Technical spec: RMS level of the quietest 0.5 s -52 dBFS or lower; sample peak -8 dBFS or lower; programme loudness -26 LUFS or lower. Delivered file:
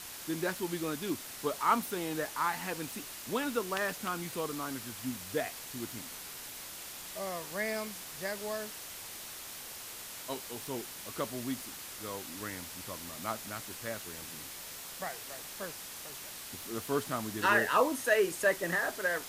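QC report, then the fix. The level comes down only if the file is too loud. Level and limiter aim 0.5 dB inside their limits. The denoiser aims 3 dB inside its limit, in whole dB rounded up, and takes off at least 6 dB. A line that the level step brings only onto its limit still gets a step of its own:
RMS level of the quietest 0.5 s -45 dBFS: fail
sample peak -13.5 dBFS: OK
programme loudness -35.0 LUFS: OK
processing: denoiser 10 dB, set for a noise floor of -45 dBFS

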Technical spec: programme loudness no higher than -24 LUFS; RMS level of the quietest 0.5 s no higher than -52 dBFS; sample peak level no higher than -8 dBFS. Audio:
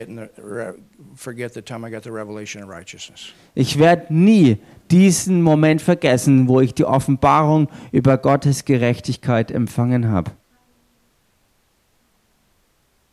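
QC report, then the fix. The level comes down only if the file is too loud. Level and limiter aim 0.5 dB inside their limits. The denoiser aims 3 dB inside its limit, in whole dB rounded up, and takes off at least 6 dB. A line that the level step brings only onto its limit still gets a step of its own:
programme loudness -16.0 LUFS: fail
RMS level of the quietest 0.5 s -62 dBFS: OK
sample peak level -4.0 dBFS: fail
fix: gain -8.5 dB

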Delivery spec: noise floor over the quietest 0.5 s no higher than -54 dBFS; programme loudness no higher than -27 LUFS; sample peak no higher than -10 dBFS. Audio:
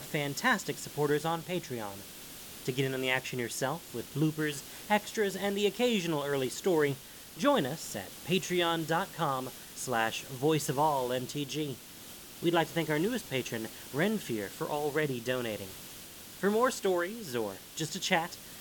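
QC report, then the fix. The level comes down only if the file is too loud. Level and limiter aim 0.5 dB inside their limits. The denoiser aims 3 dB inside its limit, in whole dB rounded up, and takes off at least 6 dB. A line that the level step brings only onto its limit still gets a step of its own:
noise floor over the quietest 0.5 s -48 dBFS: fail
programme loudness -32.0 LUFS: OK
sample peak -13.5 dBFS: OK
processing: denoiser 9 dB, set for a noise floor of -48 dBFS

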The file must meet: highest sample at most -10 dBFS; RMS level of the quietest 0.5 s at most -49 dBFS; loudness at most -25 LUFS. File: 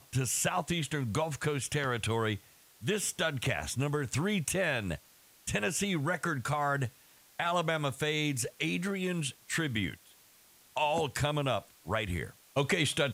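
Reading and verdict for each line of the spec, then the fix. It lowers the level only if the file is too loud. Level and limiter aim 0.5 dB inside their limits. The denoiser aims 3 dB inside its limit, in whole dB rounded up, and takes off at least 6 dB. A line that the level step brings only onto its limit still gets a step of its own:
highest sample -14.5 dBFS: OK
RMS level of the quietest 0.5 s -61 dBFS: OK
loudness -32.0 LUFS: OK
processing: none

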